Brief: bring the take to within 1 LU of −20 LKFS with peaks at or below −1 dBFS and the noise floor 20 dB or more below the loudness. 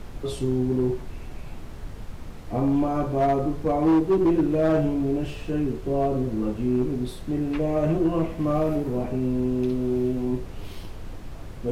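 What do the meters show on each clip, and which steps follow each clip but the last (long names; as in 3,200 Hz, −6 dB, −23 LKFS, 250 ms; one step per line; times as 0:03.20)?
share of clipped samples 1.3%; peaks flattened at −15.5 dBFS; background noise floor −38 dBFS; target noise floor −45 dBFS; integrated loudness −24.5 LKFS; sample peak −15.5 dBFS; target loudness −20.0 LKFS
→ clipped peaks rebuilt −15.5 dBFS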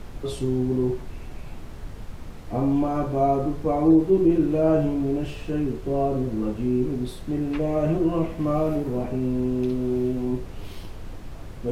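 share of clipped samples 0.0%; background noise floor −38 dBFS; target noise floor −44 dBFS
→ noise reduction from a noise print 6 dB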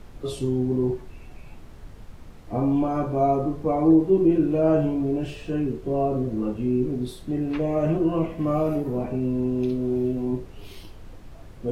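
background noise floor −44 dBFS; integrated loudness −24.0 LKFS; sample peak −8.0 dBFS; target loudness −20.0 LKFS
→ level +4 dB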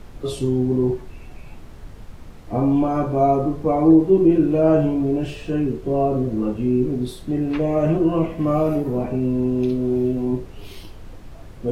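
integrated loudness −20.0 LKFS; sample peak −4.0 dBFS; background noise floor −40 dBFS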